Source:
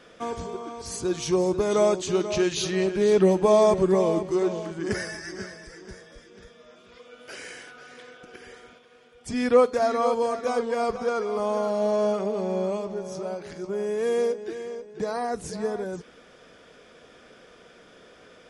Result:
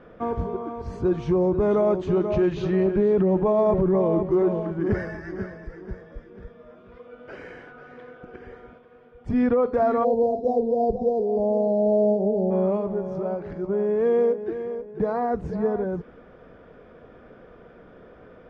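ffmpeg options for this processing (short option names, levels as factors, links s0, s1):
-filter_complex "[0:a]asplit=3[s0][s1][s2];[s0]afade=t=out:st=10.03:d=0.02[s3];[s1]asuperstop=centerf=1800:order=12:qfactor=0.56,afade=t=in:st=10.03:d=0.02,afade=t=out:st=12.5:d=0.02[s4];[s2]afade=t=in:st=12.5:d=0.02[s5];[s3][s4][s5]amix=inputs=3:normalize=0,lowpass=1300,lowshelf=f=140:g=10,alimiter=limit=0.141:level=0:latency=1:release=18,volume=1.5"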